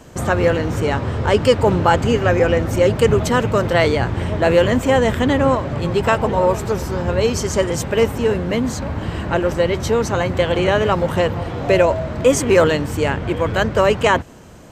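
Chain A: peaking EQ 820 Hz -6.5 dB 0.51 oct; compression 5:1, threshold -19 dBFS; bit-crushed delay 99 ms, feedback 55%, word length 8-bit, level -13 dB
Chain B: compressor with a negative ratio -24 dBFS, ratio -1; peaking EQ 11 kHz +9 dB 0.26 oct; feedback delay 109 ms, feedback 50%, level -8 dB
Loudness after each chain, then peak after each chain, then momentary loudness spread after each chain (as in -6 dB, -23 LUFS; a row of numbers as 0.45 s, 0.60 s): -23.5 LUFS, -22.5 LUFS; -9.0 dBFS, -6.0 dBFS; 2 LU, 5 LU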